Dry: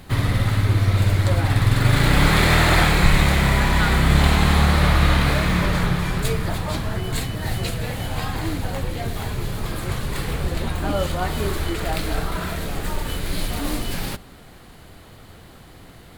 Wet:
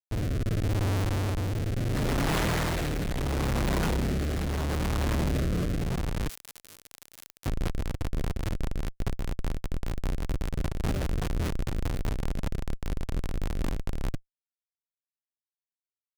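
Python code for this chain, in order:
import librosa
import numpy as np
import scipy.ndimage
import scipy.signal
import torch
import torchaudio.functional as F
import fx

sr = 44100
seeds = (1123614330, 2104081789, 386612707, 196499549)

y = fx.schmitt(x, sr, flips_db=-19.0)
y = fx.differentiator(y, sr, at=(6.29, 7.46))
y = fx.rotary_switch(y, sr, hz=0.75, then_hz=5.0, switch_at_s=6.46)
y = y * librosa.db_to_amplitude(-5.5)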